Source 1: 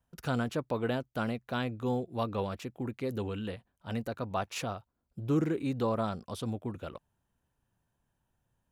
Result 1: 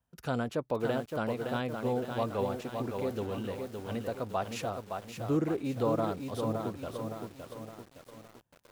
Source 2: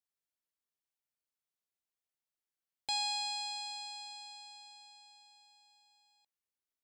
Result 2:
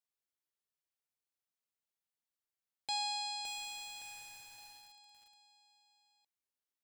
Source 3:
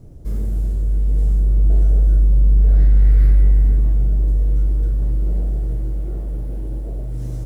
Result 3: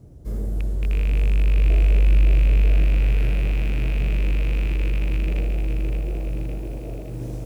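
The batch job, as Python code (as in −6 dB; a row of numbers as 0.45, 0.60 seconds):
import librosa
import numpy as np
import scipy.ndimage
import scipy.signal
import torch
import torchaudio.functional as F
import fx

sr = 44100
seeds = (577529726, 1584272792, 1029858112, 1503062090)

y = fx.rattle_buzz(x, sr, strikes_db=-14.0, level_db=-21.0)
y = scipy.signal.sosfilt(scipy.signal.butter(2, 42.0, 'highpass', fs=sr, output='sos'), y)
y = fx.dynamic_eq(y, sr, hz=560.0, q=0.9, threshold_db=-45.0, ratio=4.0, max_db=5)
y = fx.echo_crushed(y, sr, ms=565, feedback_pct=55, bits=8, wet_db=-5.0)
y = y * librosa.db_to_amplitude(-3.0)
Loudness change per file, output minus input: +0.5, −2.5, −4.0 LU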